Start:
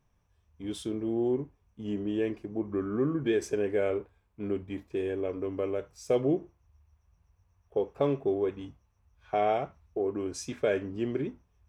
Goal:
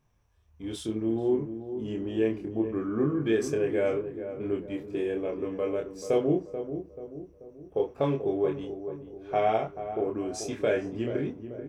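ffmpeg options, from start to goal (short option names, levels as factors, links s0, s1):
-filter_complex "[0:a]asplit=2[s0][s1];[s1]adelay=27,volume=0.708[s2];[s0][s2]amix=inputs=2:normalize=0,asplit=2[s3][s4];[s4]adelay=435,lowpass=f=940:p=1,volume=0.355,asplit=2[s5][s6];[s6]adelay=435,lowpass=f=940:p=1,volume=0.51,asplit=2[s7][s8];[s8]adelay=435,lowpass=f=940:p=1,volume=0.51,asplit=2[s9][s10];[s10]adelay=435,lowpass=f=940:p=1,volume=0.51,asplit=2[s11][s12];[s12]adelay=435,lowpass=f=940:p=1,volume=0.51,asplit=2[s13][s14];[s14]adelay=435,lowpass=f=940:p=1,volume=0.51[s15];[s5][s7][s9][s11][s13][s15]amix=inputs=6:normalize=0[s16];[s3][s16]amix=inputs=2:normalize=0"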